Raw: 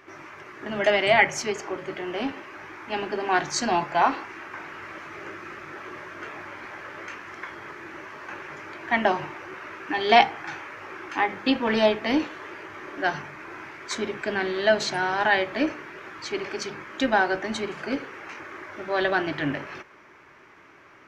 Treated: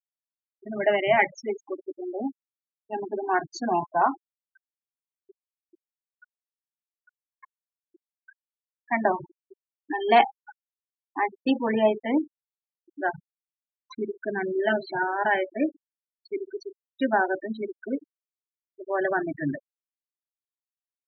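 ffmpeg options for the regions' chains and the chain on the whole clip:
-filter_complex "[0:a]asettb=1/sr,asplit=3[s0][s1][s2];[s0]atrim=end=14.544[s3];[s1]atrim=start=14.54:end=15.03,asetpts=PTS-STARTPTS,afade=t=in:d=0.004:c=qsin,afade=t=out:st=0.486:d=0.004:c=qsin,highpass=160,lowpass=3700,asplit=2[s4][s5];[s5]adelay=13,volume=0.794[s6];[s4][s6]amix=inputs=2:normalize=0,atrim=end_sample=21609[s7];[s2]atrim=start=15.026[s8];[s3][s7]acrossfade=d=0.004:c1=hsin:c2=qsin[s9];[s9][s8]acrossfade=d=0.004:c1=qsin:c2=hsin,afftfilt=real='re*gte(hypot(re,im),0.112)':imag='im*gte(hypot(re,im),0.112)':win_size=1024:overlap=0.75,highshelf=f=2500:g=-10"

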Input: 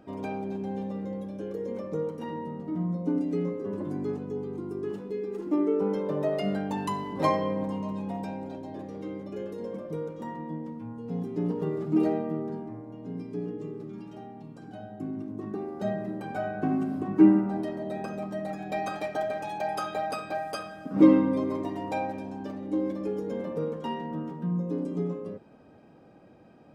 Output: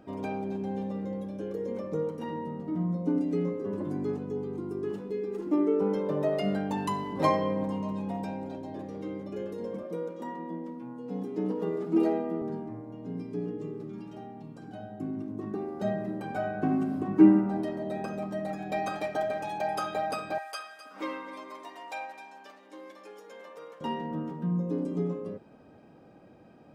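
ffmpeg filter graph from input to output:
-filter_complex "[0:a]asettb=1/sr,asplit=3[s0][s1][s2];[s0]atrim=end=9.834[s3];[s1]atrim=start=9.83:end=12.42,asetpts=PTS-STARTPTS,afade=t=in:d=0.004:c=qsin,afade=t=out:st=2.586:d=0.004:c=qsin,highpass=190,afreqshift=15[s4];[s2]atrim=start=12.416[s5];[s3][s4]acrossfade=d=0.004:c1=hsin:c2=qsin[s6];[s6][s5]acrossfade=d=0.004:c1=qsin:c2=hsin,asettb=1/sr,asplit=3[s7][s8][s9];[s7]atrim=end=20.384[s10];[s8]atrim=start=20.38:end=23.81,asetpts=PTS-STARTPTS,afade=t=in:d=0.004:c=qsin,afade=t=out:st=3.426:d=0.004:c=qsin,highpass=1100,aecho=1:1:259:0.211,atrim=end_sample=151263[s11];[s9]atrim=start=23.806[s12];[s10][s11]acrossfade=d=0.004:c1=hsin:c2=qsin[s13];[s13][s12]acrossfade=d=0.004:c1=qsin:c2=hsin"

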